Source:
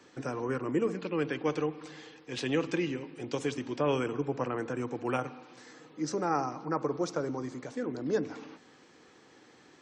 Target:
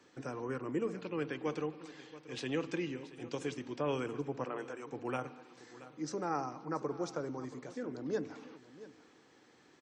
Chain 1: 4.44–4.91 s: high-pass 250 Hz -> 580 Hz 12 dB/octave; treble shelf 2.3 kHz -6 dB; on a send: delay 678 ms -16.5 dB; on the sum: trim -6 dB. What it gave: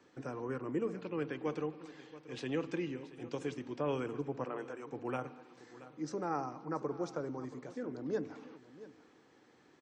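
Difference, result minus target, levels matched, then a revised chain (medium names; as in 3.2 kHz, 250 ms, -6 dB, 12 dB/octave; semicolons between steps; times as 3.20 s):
4 kHz band -4.0 dB
4.44–4.91 s: high-pass 250 Hz -> 580 Hz 12 dB/octave; on a send: delay 678 ms -16.5 dB; on the sum: trim -6 dB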